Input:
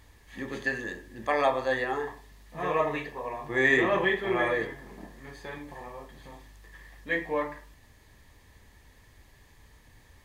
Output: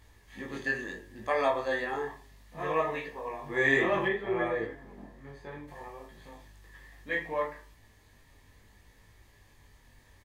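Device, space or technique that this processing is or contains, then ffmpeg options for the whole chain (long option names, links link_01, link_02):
double-tracked vocal: -filter_complex "[0:a]asplit=2[link_01][link_02];[link_02]adelay=29,volume=-10.5dB[link_03];[link_01][link_03]amix=inputs=2:normalize=0,flanger=delay=18:depth=3.6:speed=0.66,asettb=1/sr,asplit=3[link_04][link_05][link_06];[link_04]atrim=end=4.084[link_07];[link_05]atrim=start=4.08:end=5.68,asetpts=PTS-STARTPTS,afade=type=in:duration=0.004:curve=qsin,afade=type=out:start_time=1.596:duration=0.004:curve=qsin,highshelf=frequency=2300:gain=-10[link_08];[link_06]atrim=start=5.676[link_09];[link_07][link_08]acrossfade=duration=0.004:curve1=hsin:curve2=qsin[link_10];[link_10][link_09]acrossfade=duration=0.004:curve1=qsin:curve2=hsin"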